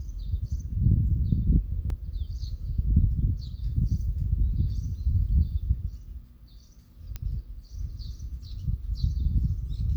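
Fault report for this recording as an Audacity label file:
1.900000	1.900000	dropout 2.3 ms
7.160000	7.160000	pop -20 dBFS

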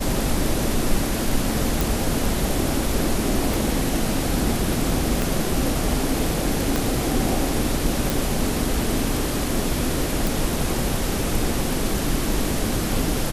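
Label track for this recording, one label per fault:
1.810000	1.810000	pop
3.540000	3.540000	pop
5.220000	5.220000	pop
6.760000	6.760000	pop
8.100000	8.100000	pop
10.270000	10.270000	pop

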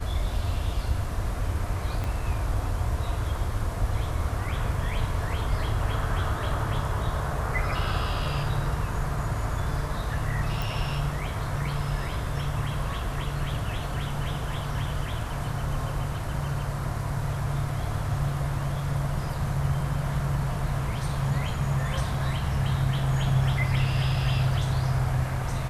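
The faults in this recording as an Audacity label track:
2.040000	2.040000	pop -19 dBFS
10.620000	10.620000	pop

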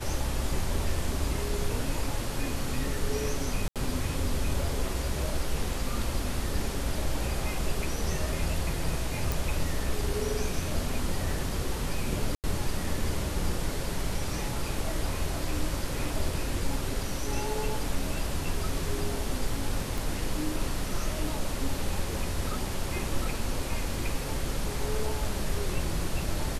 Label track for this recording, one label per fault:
3.680000	3.760000	dropout 77 ms
9.320000	9.320000	pop
12.350000	12.440000	dropout 88 ms
19.980000	19.980000	pop

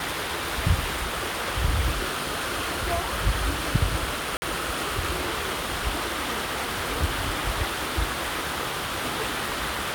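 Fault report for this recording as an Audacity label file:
4.370000	4.420000	dropout 50 ms

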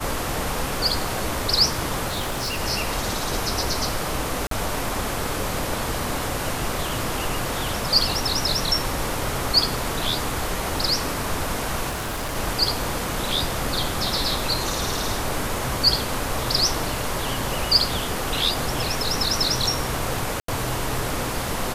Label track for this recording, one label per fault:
2.080000	2.600000	clipped -22.5 dBFS
4.470000	4.510000	dropout 43 ms
11.890000	12.370000	clipped -24.5 dBFS
20.400000	20.480000	dropout 83 ms

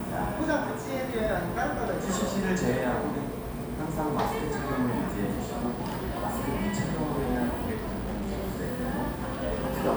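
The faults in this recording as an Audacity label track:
7.720000	8.320000	clipped -29.5 dBFS

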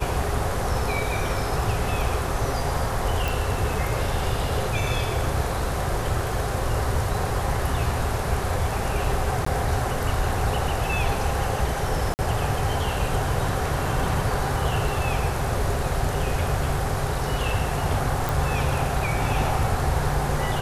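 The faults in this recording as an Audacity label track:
3.280000	3.280000	pop
9.450000	9.460000	dropout 14 ms
12.140000	12.190000	dropout 49 ms
18.290000	18.290000	pop

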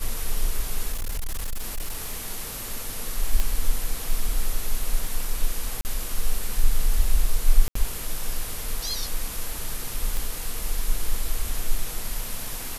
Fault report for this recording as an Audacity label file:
0.920000	2.270000	clipped -24 dBFS
3.400000	3.400000	pop -10 dBFS
5.810000	5.850000	dropout 39 ms
7.680000	7.750000	dropout 74 ms
10.170000	10.170000	pop

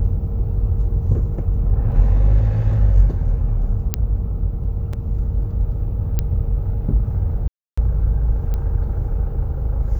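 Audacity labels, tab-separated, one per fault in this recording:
1.920000	1.920000	dropout 2.7 ms
3.940000	3.940000	pop -4 dBFS
4.930000	4.930000	dropout 4.1 ms
6.190000	6.190000	pop -8 dBFS
7.480000	7.780000	dropout 295 ms
8.540000	8.540000	pop -14 dBFS

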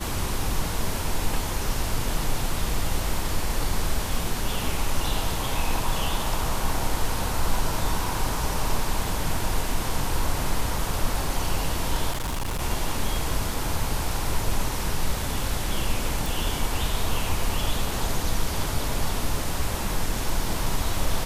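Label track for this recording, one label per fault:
12.110000	12.620000	clipped -24.5 dBFS
16.260000	16.260000	pop

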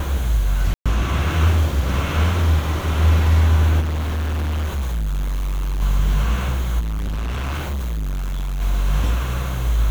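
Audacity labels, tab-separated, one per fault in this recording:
0.740000	0.860000	dropout 116 ms
3.800000	5.820000	clipped -19.5 dBFS
6.790000	8.620000	clipped -21.5 dBFS

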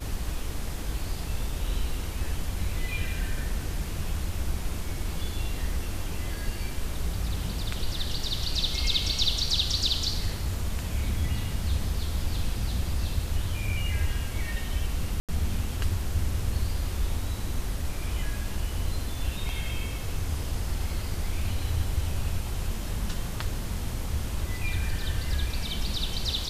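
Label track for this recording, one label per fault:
15.200000	15.290000	dropout 87 ms

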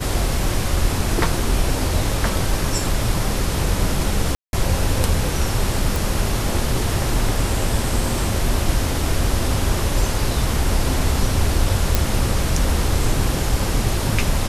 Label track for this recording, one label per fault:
4.350000	4.530000	dropout 181 ms
5.960000	5.960000	pop
11.950000	11.950000	pop

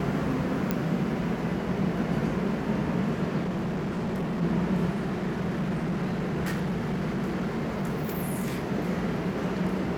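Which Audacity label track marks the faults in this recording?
0.710000	0.710000	pop -12 dBFS
3.430000	4.430000	clipped -26.5 dBFS
4.910000	8.570000	clipped -25 dBFS

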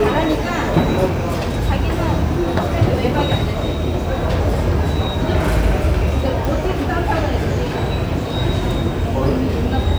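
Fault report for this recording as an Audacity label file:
1.050000	1.500000	clipped -15.5 dBFS
6.450000	6.450000	pop

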